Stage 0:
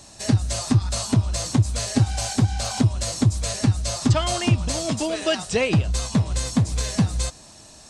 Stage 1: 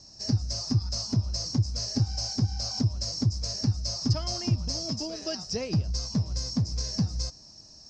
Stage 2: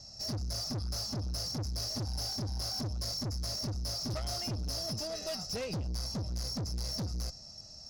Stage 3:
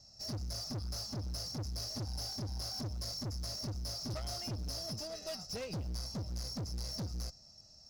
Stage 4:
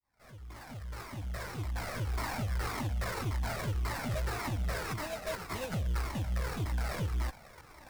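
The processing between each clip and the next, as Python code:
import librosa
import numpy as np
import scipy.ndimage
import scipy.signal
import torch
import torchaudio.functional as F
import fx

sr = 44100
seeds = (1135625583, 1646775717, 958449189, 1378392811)

y1 = fx.curve_eq(x, sr, hz=(170.0, 3600.0, 5200.0, 9400.0), db=(0, -14, 13, -27))
y1 = y1 * 10.0 ** (-6.5 / 20.0)
y2 = y1 + 0.58 * np.pad(y1, (int(1.5 * sr / 1000.0), 0))[:len(y1)]
y2 = fx.tube_stage(y2, sr, drive_db=33.0, bias=0.25)
y3 = fx.quant_float(y2, sr, bits=4)
y3 = fx.upward_expand(y3, sr, threshold_db=-45.0, expansion=1.5)
y3 = y3 * 10.0 ** (-3.0 / 20.0)
y4 = fx.fade_in_head(y3, sr, length_s=2.34)
y4 = fx.sample_hold(y4, sr, seeds[0], rate_hz=3200.0, jitter_pct=20)
y4 = fx.comb_cascade(y4, sr, direction='falling', hz=1.8)
y4 = y4 * 10.0 ** (9.0 / 20.0)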